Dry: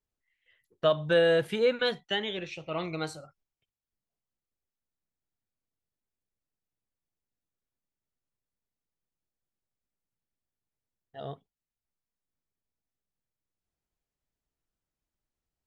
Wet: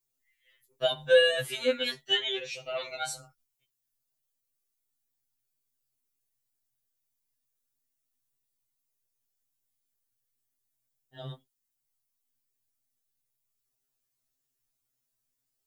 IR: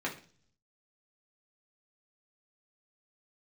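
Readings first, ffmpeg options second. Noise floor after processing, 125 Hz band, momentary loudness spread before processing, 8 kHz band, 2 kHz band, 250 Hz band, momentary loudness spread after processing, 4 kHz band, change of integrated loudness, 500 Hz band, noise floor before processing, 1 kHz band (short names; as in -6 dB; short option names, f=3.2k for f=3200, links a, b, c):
-82 dBFS, -7.0 dB, 19 LU, +10.5 dB, +2.5 dB, -8.5 dB, 22 LU, +5.5 dB, +0.5 dB, -1.0 dB, under -85 dBFS, -3.5 dB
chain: -af "crystalizer=i=3.5:c=0,afftfilt=real='re*2.45*eq(mod(b,6),0)':imag='im*2.45*eq(mod(b,6),0)':win_size=2048:overlap=0.75"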